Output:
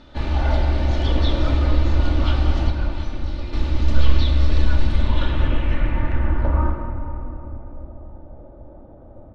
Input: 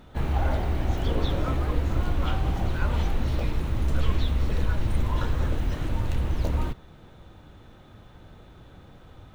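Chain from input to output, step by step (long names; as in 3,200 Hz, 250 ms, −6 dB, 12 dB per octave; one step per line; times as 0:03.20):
comb filter 3.4 ms, depth 50%
low-pass filter sweep 4,700 Hz → 650 Hz, 0:04.83–0:07.48
0:02.70–0:03.53: tuned comb filter 350 Hz, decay 0.75 s, mix 70%
rectangular room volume 190 cubic metres, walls hard, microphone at 0.31 metres
level +1.5 dB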